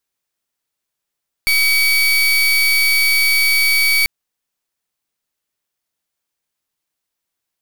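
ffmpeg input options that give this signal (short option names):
-f lavfi -i "aevalsrc='0.2*(2*lt(mod(2270*t,1),0.31)-1)':d=2.59:s=44100"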